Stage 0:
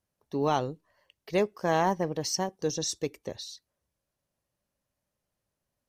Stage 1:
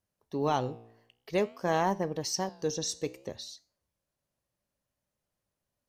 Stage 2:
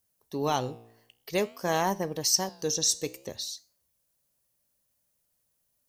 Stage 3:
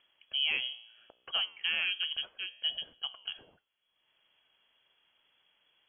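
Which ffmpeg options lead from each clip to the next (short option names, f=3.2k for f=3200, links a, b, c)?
-af "flanger=delay=9.9:depth=7.7:regen=86:speed=0.53:shape=sinusoidal,volume=2.5dB"
-af "aemphasis=mode=production:type=75kf"
-af "alimiter=limit=-20dB:level=0:latency=1:release=468,acompressor=mode=upward:threshold=-46dB:ratio=2.5,lowpass=f=2.9k:t=q:w=0.5098,lowpass=f=2.9k:t=q:w=0.6013,lowpass=f=2.9k:t=q:w=0.9,lowpass=f=2.9k:t=q:w=2.563,afreqshift=-3400"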